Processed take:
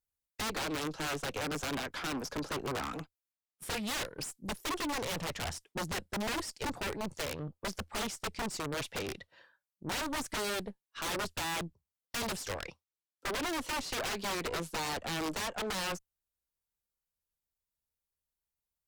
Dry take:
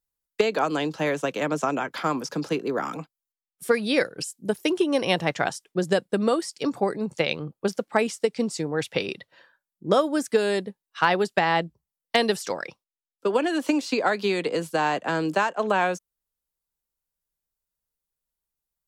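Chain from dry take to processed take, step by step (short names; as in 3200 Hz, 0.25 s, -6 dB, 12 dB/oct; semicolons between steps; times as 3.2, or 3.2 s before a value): wrapped overs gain 20.5 dB; bell 81 Hz +10.5 dB 0.43 oct; tube stage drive 30 dB, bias 0.65; Doppler distortion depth 0.2 ms; gain -2 dB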